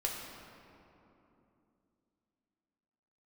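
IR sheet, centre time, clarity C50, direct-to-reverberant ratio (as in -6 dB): 99 ms, 1.5 dB, -1.5 dB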